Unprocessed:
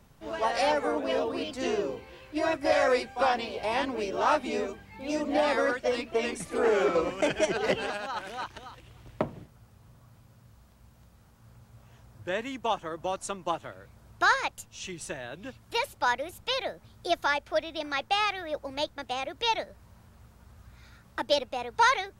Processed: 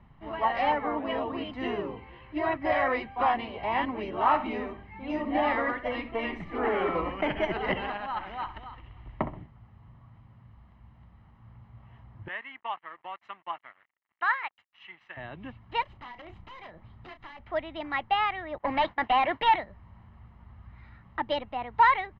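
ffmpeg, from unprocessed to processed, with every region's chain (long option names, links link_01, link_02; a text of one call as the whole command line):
ffmpeg -i in.wav -filter_complex "[0:a]asettb=1/sr,asplit=3[link_01][link_02][link_03];[link_01]atrim=end=4.194[link_04];[link_02]atrim=start=4.19:end=9.4,asetpts=PTS-STARTPTS,afade=type=in:duration=0.004:curve=qsin,afade=type=out:start_time=5.206:duration=0.004:curve=qsin,asubboost=boost=3.5:cutoff=59,asplit=2[link_05][link_06];[link_06]adelay=64,lowpass=frequency=4100:poles=1,volume=-11.5dB,asplit=2[link_07][link_08];[link_08]adelay=64,lowpass=frequency=4100:poles=1,volume=0.34,asplit=2[link_09][link_10];[link_10]adelay=64,lowpass=frequency=4100:poles=1,volume=0.34,asplit=2[link_11][link_12];[link_12]adelay=64,lowpass=frequency=4100:poles=1,volume=0.34[link_13];[link_05][link_07][link_09][link_11][link_13]amix=inputs=5:normalize=0,atrim=end_sample=229761[link_14];[link_03]atrim=start=9.396[link_15];[link_04][link_14]acrossfade=duration=0.004:curve1=hsin:curve2=qsin[link_16];[link_16][link_15]acrossfade=duration=0.004:curve1=qsin:curve2=hsin,asettb=1/sr,asplit=3[link_17][link_18][link_19];[link_17]atrim=end=12.284[link_20];[link_18]atrim=start=12.28:end=15.17,asetpts=PTS-STARTPTS,afade=type=in:duration=0.004:curve=qsin,afade=type=out:start_time=2.886:duration=0.004:curve=qsin,aeval=exprs='sgn(val(0))*max(abs(val(0))-0.00422,0)':channel_layout=same,bandpass=frequency=2000:width_type=q:width=1.1[link_21];[link_19]atrim=start=15.166[link_22];[link_20][link_21]acrossfade=duration=0.004:curve1=hsin:curve2=qsin[link_23];[link_23][link_22]acrossfade=duration=0.004:curve1=qsin:curve2=hsin,asettb=1/sr,asplit=3[link_24][link_25][link_26];[link_24]atrim=end=15.824[link_27];[link_25]atrim=start=15.82:end=17.39,asetpts=PTS-STARTPTS,afade=type=in:duration=0.004:curve=qsin,afade=type=out:start_time=1.566:duration=0.004:curve=qsin,acompressor=threshold=-39dB:ratio=12:attack=3.2:release=140:knee=1:detection=peak,aeval=exprs='(mod(70.8*val(0)+1,2)-1)/70.8':channel_layout=same,asplit=2[link_28][link_29];[link_29]adelay=33,volume=-10dB[link_30];[link_28][link_30]amix=inputs=2:normalize=0,atrim=end_sample=69237[link_31];[link_26]atrim=start=17.386[link_32];[link_27][link_31]acrossfade=duration=0.004:curve1=hsin:curve2=qsin[link_33];[link_33][link_32]acrossfade=duration=0.004:curve1=qsin:curve2=hsin,asettb=1/sr,asplit=3[link_34][link_35][link_36];[link_34]atrim=end=18.584[link_37];[link_35]atrim=start=18.58:end=19.56,asetpts=PTS-STARTPTS,afade=type=in:duration=0.004:curve=qsin,afade=type=out:start_time=0.976:duration=0.004:curve=qsin,agate=range=-33dB:threshold=-44dB:ratio=3:release=100:detection=peak,bandreject=frequency=1300:width=13,asplit=2[link_38][link_39];[link_39]highpass=frequency=720:poles=1,volume=24dB,asoftclip=type=tanh:threshold=-15.5dB[link_40];[link_38][link_40]amix=inputs=2:normalize=0,lowpass=frequency=3800:poles=1,volume=-6dB[link_41];[link_36]atrim=start=19.556[link_42];[link_37][link_41]acrossfade=duration=0.004:curve1=hsin:curve2=qsin[link_43];[link_43][link_42]acrossfade=duration=0.004:curve1=qsin:curve2=hsin,lowpass=frequency=2700:width=0.5412,lowpass=frequency=2700:width=1.3066,aecho=1:1:1:0.53" out.wav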